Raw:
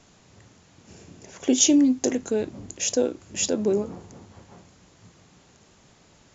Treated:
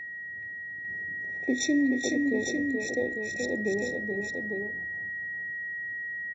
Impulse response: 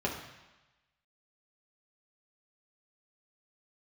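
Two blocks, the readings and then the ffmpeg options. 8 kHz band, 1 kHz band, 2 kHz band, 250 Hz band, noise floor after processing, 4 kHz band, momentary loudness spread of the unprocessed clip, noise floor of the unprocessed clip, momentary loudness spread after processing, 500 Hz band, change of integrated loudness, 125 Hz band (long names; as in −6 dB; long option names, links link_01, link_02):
can't be measured, −6.5 dB, +15.0 dB, −5.0 dB, −39 dBFS, −9.0 dB, 14 LU, −57 dBFS, 9 LU, −5.0 dB, −7.0 dB, −5.0 dB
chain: -filter_complex "[0:a]adynamicsmooth=sensitivity=2.5:basefreq=2300,aeval=exprs='val(0)+0.0355*sin(2*PI*1900*n/s)':channel_layout=same,aecho=1:1:427|452|850:0.562|0.266|0.501,asplit=2[link_01][link_02];[1:a]atrim=start_sample=2205,asetrate=70560,aresample=44100,adelay=54[link_03];[link_02][link_03]afir=irnorm=-1:irlink=0,volume=-23.5dB[link_04];[link_01][link_04]amix=inputs=2:normalize=0,aresample=16000,aresample=44100,afftfilt=real='re*eq(mod(floor(b*sr/1024/870),2),0)':imag='im*eq(mod(floor(b*sr/1024/870),2),0)':win_size=1024:overlap=0.75,volume=-7dB"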